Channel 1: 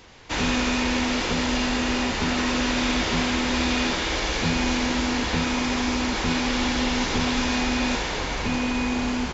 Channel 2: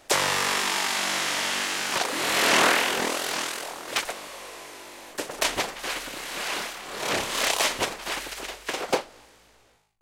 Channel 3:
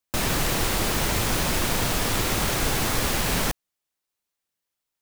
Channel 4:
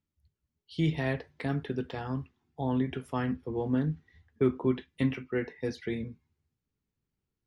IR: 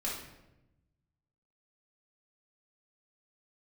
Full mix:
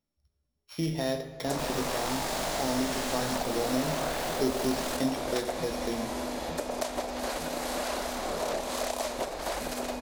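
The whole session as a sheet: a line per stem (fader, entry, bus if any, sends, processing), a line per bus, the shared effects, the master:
-11.5 dB, 1.15 s, bus A, send -13.5 dB, none
-5.5 dB, 1.40 s, bus A, no send, level rider gain up to 14 dB
-12.0 dB, 1.45 s, no bus, no send, none
-2.0 dB, 0.00 s, no bus, send -7.5 dB, sorted samples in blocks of 8 samples
bus A: 0.0 dB, peaking EQ 2.9 kHz -10.5 dB 1.7 oct; compression, threshold -31 dBFS, peak gain reduction 13.5 dB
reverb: on, RT60 0.95 s, pre-delay 4 ms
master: fifteen-band graphic EQ 100 Hz -9 dB, 630 Hz +10 dB, 4 kHz +4 dB; compression 1.5:1, threshold -32 dBFS, peak gain reduction 5.5 dB

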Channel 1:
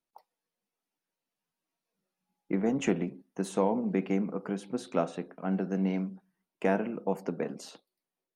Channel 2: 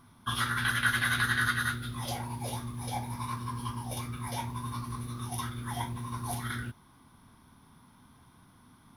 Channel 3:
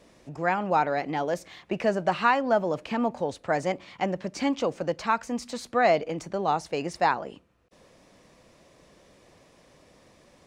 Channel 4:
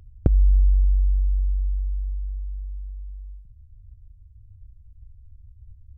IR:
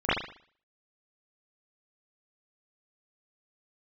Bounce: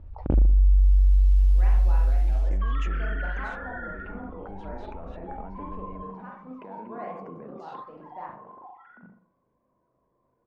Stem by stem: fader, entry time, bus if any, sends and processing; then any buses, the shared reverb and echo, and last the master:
-13.0 dB, 0.00 s, bus A, no send, peak limiter -24.5 dBFS, peak gain reduction 10 dB; level flattener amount 100%
-12.5 dB, 2.35 s, bus A, send -13 dB, formants replaced by sine waves; low-pass 2.3 kHz 12 dB/octave
-16.0 dB, 1.15 s, no bus, send -13.5 dB, feedback comb 120 Hz, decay 0.16 s, harmonics all, mix 60%; vibrato with a chosen wave saw up 3.5 Hz, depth 250 cents
0.0 dB, 0.00 s, bus A, send -14 dB, comb 3.5 ms, depth 45%; compression, threshold -20 dBFS, peak gain reduction 9.5 dB; auto duck -19 dB, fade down 1.50 s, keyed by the first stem
bus A: 0.0 dB, peaking EQ 3.6 kHz +5.5 dB 2.3 oct; compression 6:1, threshold -36 dBFS, peak gain reduction 14.5 dB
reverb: on, pre-delay 38 ms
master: level-controlled noise filter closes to 760 Hz, open at -17.5 dBFS

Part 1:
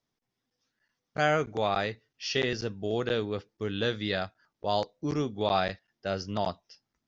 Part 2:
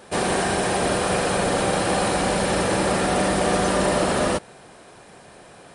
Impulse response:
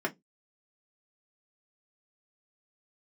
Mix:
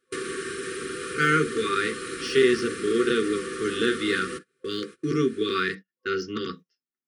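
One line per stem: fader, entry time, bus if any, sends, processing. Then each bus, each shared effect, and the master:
+1.5 dB, 0.00 s, send -4 dB, de-esser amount 90%
-3.5 dB, 0.00 s, send -11.5 dB, compression 16:1, threshold -26 dBFS, peak gain reduction 10.5 dB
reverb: on, RT60 0.15 s, pre-delay 3 ms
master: gate -34 dBFS, range -25 dB; FFT band-reject 510–1100 Hz; bass shelf 120 Hz -10.5 dB

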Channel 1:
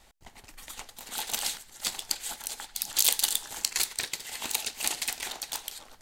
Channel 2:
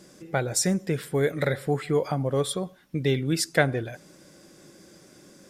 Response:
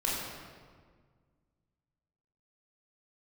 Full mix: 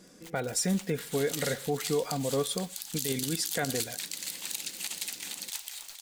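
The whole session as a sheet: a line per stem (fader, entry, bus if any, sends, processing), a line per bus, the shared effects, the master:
-3.5 dB, 0.00 s, no send, echo send -14.5 dB, bit crusher 8-bit; tilt shelf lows -8.5 dB, about 1.1 kHz; auto duck -8 dB, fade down 1.20 s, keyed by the second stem
-4.0 dB, 0.00 s, no send, no echo send, comb 4.2 ms, depth 44%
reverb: none
echo: feedback delay 467 ms, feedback 38%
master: peak limiter -18.5 dBFS, peak gain reduction 11.5 dB

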